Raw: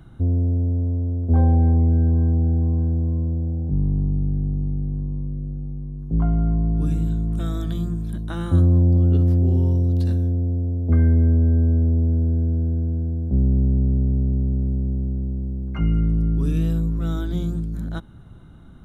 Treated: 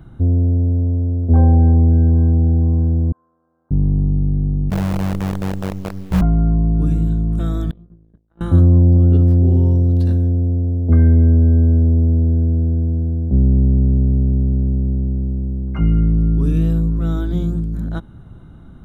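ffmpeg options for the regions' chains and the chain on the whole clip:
-filter_complex "[0:a]asettb=1/sr,asplit=3[a][b][c];[a]atrim=end=3.124[d];[b]atrim=start=3.12:end=3.71,asetpts=PTS-STARTPTS,afade=t=in:d=0.004:c=qsin,afade=t=out:st=0.586:d=0.004:c=qsin,asuperpass=centerf=1300:order=4:qfactor=2.6,asplit=2[e][f];[f]adelay=48,volume=-4.5dB[g];[e][g]amix=inputs=2:normalize=0,atrim=end_sample=26019[h];[c]atrim=start=3.706[i];[d][h]acrossfade=d=0.004:c1=hsin:c2=qsin[j];[j][i]acrossfade=d=0.004:c1=qsin:c2=hsin,asettb=1/sr,asplit=3[k][l][m];[k]atrim=end=4.704[n];[l]atrim=start=4.7:end=6.21,asetpts=PTS-STARTPTS,afade=t=in:d=0.004:c=qsin,afade=t=out:st=1.506:d=0.004:c=qsin,lowpass=2.3k,afreqshift=-240,acrusher=bits=5:dc=4:mix=0:aa=0.000001[o];[m]atrim=start=6.206[p];[n][o]acrossfade=d=0.004:c1=hsin:c2=qsin[q];[q][p]acrossfade=d=0.004:c1=qsin:c2=hsin,asettb=1/sr,asplit=3[r][s][t];[r]atrim=end=7.714[u];[s]atrim=start=7.71:end=8.41,asetpts=PTS-STARTPTS,afade=t=in:d=0.004:c=qsin,afade=t=out:st=0.696:d=0.004:c=qsin,agate=range=-45dB:threshold=-23dB:ratio=16:release=100:detection=peak,lowpass=2.2k,acompressor=threshold=-44dB:ratio=12:attack=3.2:release=140:knee=1:detection=peak[v];[t]atrim=start=8.406[w];[u][v]acrossfade=d=0.004:c1=hsin:c2=qsin[x];[x][w]acrossfade=d=0.004:c1=qsin:c2=hsin,lowpass=f=1.3k:p=1,aemphasis=mode=production:type=50kf,volume=5dB"

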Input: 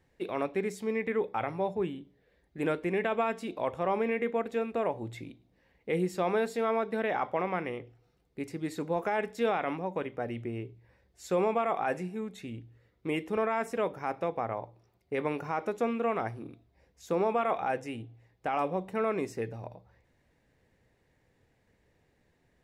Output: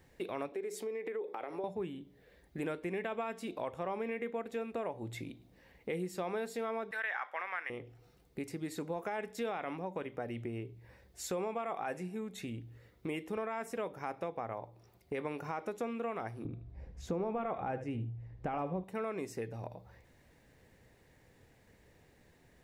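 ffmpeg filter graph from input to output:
-filter_complex "[0:a]asettb=1/sr,asplit=3[a][b][c];[a]atrim=end=0.524[d];[b]atrim=start=0.52:end=1.64,asetpts=PTS-STARTPTS,afade=t=in:d=0.004:c=qsin,afade=t=out:st=1.116:d=0.004:c=qsin,acompressor=threshold=-36dB:ratio=6:attack=3.2:release=140:knee=1:detection=peak,highpass=f=380:t=q:w=2.5[e];[c]atrim=start=1.636[f];[d][e]acrossfade=d=0.004:c1=hsin:c2=qsin[g];[g][f]acrossfade=d=0.004:c1=qsin:c2=hsin,asettb=1/sr,asplit=3[h][i][j];[h]atrim=end=6.914[k];[i]atrim=start=6.91:end=7.7,asetpts=PTS-STARTPTS,afade=t=in:d=0.004:c=qsin,afade=t=out:st=0.786:d=0.004:c=qsin,highpass=980,equalizer=f=1.7k:t=o:w=0.74:g=12.5[l];[j]atrim=start=7.696[m];[k][l]acrossfade=d=0.004:c1=hsin:c2=qsin[n];[n][m]acrossfade=d=0.004:c1=qsin:c2=hsin,asettb=1/sr,asplit=3[o][p][q];[o]atrim=end=16.454[r];[p]atrim=start=16.45:end=18.84,asetpts=PTS-STARTPTS,afade=t=in:d=0.004:c=qsin,afade=t=out:st=2.386:d=0.004:c=qsin,aemphasis=mode=reproduction:type=riaa,aecho=1:1:78:0.224,atrim=end_sample=105399[s];[q]atrim=start=18.836[t];[r][s]acrossfade=d=0.004:c1=hsin:c2=qsin[u];[u][t]acrossfade=d=0.004:c1=qsin:c2=hsin,highshelf=f=7.6k:g=7,acompressor=threshold=-47dB:ratio=2.5,volume=5.5dB"

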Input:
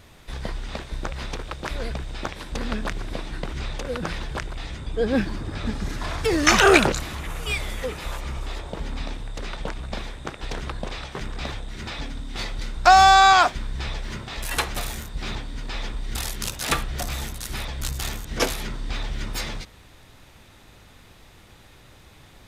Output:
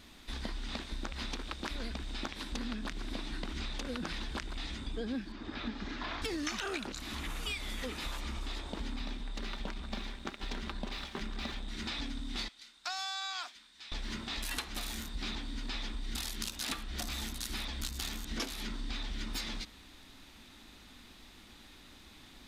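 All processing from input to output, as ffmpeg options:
-filter_complex "[0:a]asettb=1/sr,asplit=3[a][b][c];[a]atrim=end=5.324[d];[b]atrim=start=5.32:end=6.22,asetpts=PTS-STARTPTS,afade=t=in:d=0.004:c=qsin,afade=t=out:st=0.896:d=0.004:c=qsin,acrossover=split=4600[e][f];[f]acompressor=threshold=-55dB:ratio=4:attack=1:release=60[g];[e][g]amix=inputs=2:normalize=0,lowpass=f=7.3k:w=0.5412,lowpass=f=7.3k:w=1.3066,bass=f=250:g=-8,treble=f=4k:g=-5[h];[c]atrim=start=6.216[i];[d][h]acrossfade=d=0.004:c1=hsin:c2=qsin[j];[j][i]acrossfade=d=0.004:c1=qsin:c2=hsin,asettb=1/sr,asplit=3[k][l][m];[k]atrim=end=8.964[n];[l]atrim=start=8.96:end=11.68,asetpts=PTS-STARTPTS,afade=t=in:d=0.004:c=qsin,afade=t=out:st=2.716:d=0.004:c=qsin,highshelf=f=6.4k:g=-8,aecho=1:1:5.1:0.34,atrim=end_sample=119952,aeval=exprs='sgn(val(0))*max(abs(val(0))-0.00447,0)':c=same[o];[m]atrim=start=11.676[p];[n][o]acrossfade=d=0.004:c1=hsin:c2=qsin[q];[q][p]acrossfade=d=0.004:c1=qsin:c2=hsin,asettb=1/sr,asplit=3[r][s][t];[r]atrim=end=12.484[u];[s]atrim=start=12.48:end=13.92,asetpts=PTS-STARTPTS,afade=t=in:d=0.004:c=qsin,afade=t=out:st=1.436:d=0.004:c=qsin,lowpass=f=2.3k:p=1,aderivative[v];[t]atrim=start=13.916[w];[u][v]acrossfade=d=0.004:c1=hsin:c2=qsin[x];[x][w]acrossfade=d=0.004:c1=qsin:c2=hsin,equalizer=f=125:t=o:w=1:g=-12,equalizer=f=250:t=o:w=1:g=10,equalizer=f=500:t=o:w=1:g=-7,equalizer=f=4k:t=o:w=1:g=6,acompressor=threshold=-28dB:ratio=16,volume=-5.5dB"

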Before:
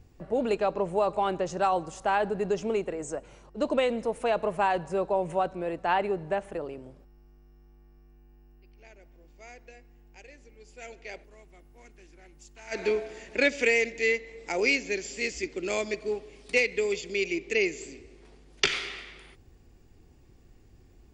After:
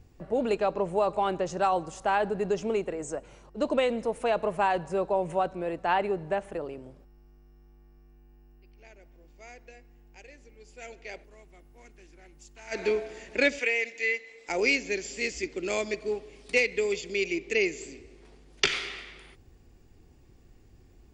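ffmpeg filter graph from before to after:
-filter_complex "[0:a]asettb=1/sr,asplit=3[a][b][c];[a]atrim=end=13.594[d];[b]atrim=start=13.59:end=14.49,asetpts=PTS-STARTPTS,afade=t=in:d=0.004:c=qsin,afade=t=out:st=0.896:d=0.004:c=qsin,highpass=f=1.2k:p=1,acrossover=split=3200[e][f];[f]acompressor=threshold=-45dB:ratio=4:attack=1:release=60[g];[e][g]amix=inputs=2:normalize=0,aecho=1:1:4:0.31,atrim=end_sample=39690[h];[c]atrim=start=14.486[i];[d][h]acrossfade=d=0.004:c1=hsin:c2=qsin[j];[j][i]acrossfade=d=0.004:c1=qsin:c2=hsin"

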